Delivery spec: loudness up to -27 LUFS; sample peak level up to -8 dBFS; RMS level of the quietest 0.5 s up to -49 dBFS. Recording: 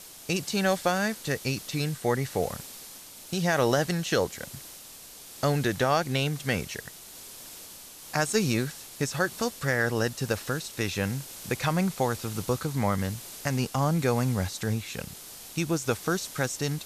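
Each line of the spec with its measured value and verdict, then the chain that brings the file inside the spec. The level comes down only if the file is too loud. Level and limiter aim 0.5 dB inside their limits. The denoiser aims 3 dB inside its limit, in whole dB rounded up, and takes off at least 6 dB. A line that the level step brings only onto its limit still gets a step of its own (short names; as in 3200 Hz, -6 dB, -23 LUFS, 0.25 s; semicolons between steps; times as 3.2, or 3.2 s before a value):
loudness -28.5 LUFS: OK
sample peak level -10.0 dBFS: OK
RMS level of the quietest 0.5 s -47 dBFS: fail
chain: denoiser 6 dB, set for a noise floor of -47 dBFS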